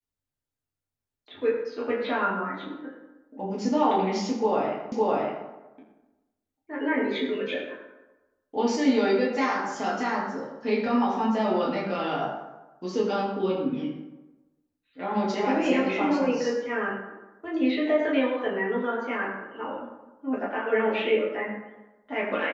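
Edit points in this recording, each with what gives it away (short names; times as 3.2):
4.92 repeat of the last 0.56 s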